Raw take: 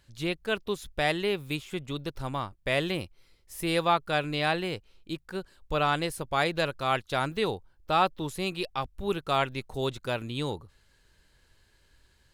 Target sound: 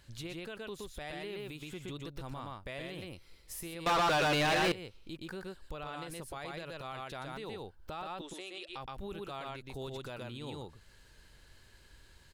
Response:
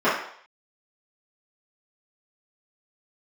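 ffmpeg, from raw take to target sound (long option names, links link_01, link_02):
-filter_complex "[0:a]acompressor=threshold=-46dB:ratio=2,asettb=1/sr,asplit=3[link_01][link_02][link_03];[link_01]atrim=end=8.214[link_04];[link_02]atrim=start=8.21:end=8.69,asetpts=PTS-STARTPTS,afade=type=in:duration=0.004:curve=qsin,afade=type=out:start_time=0.476:duration=0.004:curve=qsin,highpass=frequency=350:width=0.5412,highpass=frequency=350:width=1.3066,equalizer=frequency=460:width_type=q:width=4:gain=-7,equalizer=frequency=980:width_type=q:width=4:gain=-10,equalizer=frequency=3300:width_type=q:width=4:gain=4,equalizer=frequency=4600:width_type=q:width=4:gain=-6,lowpass=frequency=9000:width=0.5412,lowpass=frequency=9000:width=1.3066[link_05];[link_03]atrim=start=8.686[link_06];[link_04][link_05]acrossfade=duration=0.004:curve1=hsin:curve2=qsin[link_07];[link_07][link_06]acrossfade=duration=0.004:curve1=qsin:curve2=hsin,aecho=1:1:121:0.631,alimiter=level_in=11.5dB:limit=-24dB:level=0:latency=1:release=81,volume=-11.5dB,asettb=1/sr,asplit=3[link_08][link_09][link_10];[link_08]atrim=end=3.864[link_11];[link_09]atrim=start=3.86:end=4.72,asetpts=PTS-STARTPTS,afade=type=in:duration=0.004:curve=qsin,afade=type=out:start_time=0.856:duration=0.004:curve=qsin,asplit=2[link_12][link_13];[link_13]highpass=frequency=720:poles=1,volume=34dB,asoftclip=type=tanh:threshold=-23.5dB[link_14];[link_12][link_14]amix=inputs=2:normalize=0,lowpass=frequency=4700:poles=1,volume=-6dB[link_15];[link_10]atrim=start=4.716[link_16];[link_11][link_15]acrossfade=duration=0.004:curve1=hsin:curve2=qsin[link_17];[link_17][link_16]acrossfade=duration=0.004:curve1=qsin:curve2=hsin,volume=3dB"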